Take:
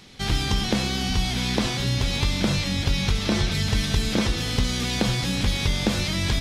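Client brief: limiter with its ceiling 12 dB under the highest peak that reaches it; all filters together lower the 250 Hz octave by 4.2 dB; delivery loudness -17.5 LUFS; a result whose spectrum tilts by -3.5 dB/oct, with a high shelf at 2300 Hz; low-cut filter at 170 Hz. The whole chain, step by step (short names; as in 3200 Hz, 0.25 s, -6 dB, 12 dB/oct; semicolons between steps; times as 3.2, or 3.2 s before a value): HPF 170 Hz; bell 250 Hz -3.5 dB; high shelf 2300 Hz -3.5 dB; gain +12 dB; limiter -8 dBFS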